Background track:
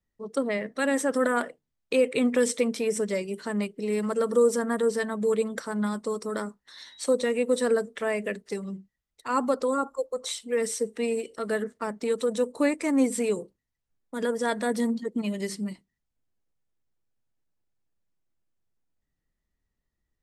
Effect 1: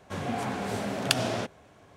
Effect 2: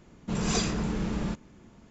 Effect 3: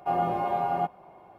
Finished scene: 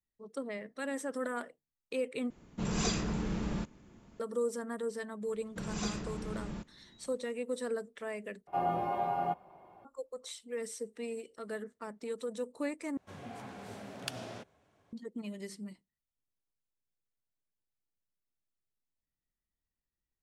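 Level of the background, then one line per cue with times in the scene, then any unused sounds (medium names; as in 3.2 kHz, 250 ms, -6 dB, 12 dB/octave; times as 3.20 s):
background track -12 dB
2.30 s: replace with 2 -4.5 dB
5.28 s: add 2 -10.5 dB
8.47 s: replace with 3 -5.5 dB
12.97 s: replace with 1 -14.5 dB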